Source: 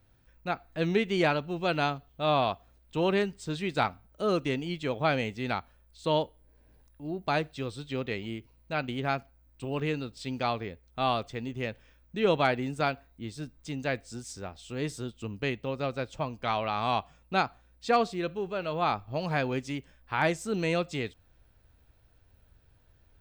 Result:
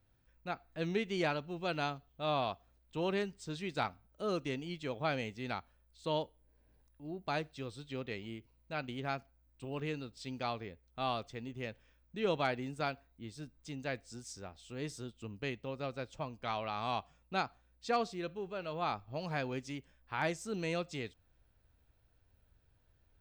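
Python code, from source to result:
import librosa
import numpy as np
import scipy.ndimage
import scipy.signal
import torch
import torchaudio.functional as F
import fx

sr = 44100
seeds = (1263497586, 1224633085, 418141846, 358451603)

y = fx.dynamic_eq(x, sr, hz=5700.0, q=1.8, threshold_db=-52.0, ratio=4.0, max_db=5)
y = y * 10.0 ** (-8.0 / 20.0)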